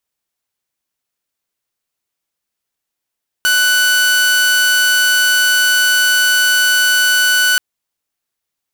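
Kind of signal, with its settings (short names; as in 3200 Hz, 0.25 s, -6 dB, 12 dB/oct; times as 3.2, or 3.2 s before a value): tone saw 1490 Hz -7.5 dBFS 4.13 s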